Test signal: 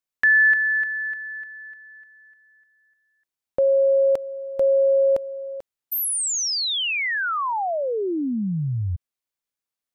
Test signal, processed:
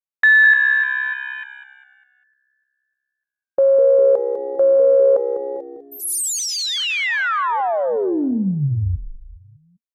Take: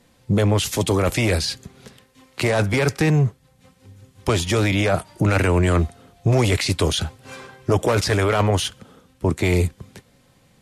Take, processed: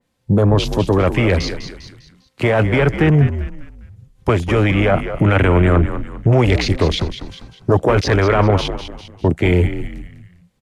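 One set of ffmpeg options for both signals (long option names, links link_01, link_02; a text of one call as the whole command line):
ffmpeg -i in.wav -filter_complex "[0:a]afwtdn=0.0398,asplit=2[link_01][link_02];[link_02]asplit=4[link_03][link_04][link_05][link_06];[link_03]adelay=200,afreqshift=-66,volume=-10dB[link_07];[link_04]adelay=400,afreqshift=-132,volume=-18.4dB[link_08];[link_05]adelay=600,afreqshift=-198,volume=-26.8dB[link_09];[link_06]adelay=800,afreqshift=-264,volume=-35.2dB[link_10];[link_07][link_08][link_09][link_10]amix=inputs=4:normalize=0[link_11];[link_01][link_11]amix=inputs=2:normalize=0,adynamicequalizer=threshold=0.0141:dfrequency=3200:dqfactor=0.7:tfrequency=3200:tqfactor=0.7:attack=5:release=100:ratio=0.375:range=3:mode=cutabove:tftype=highshelf,volume=4.5dB" out.wav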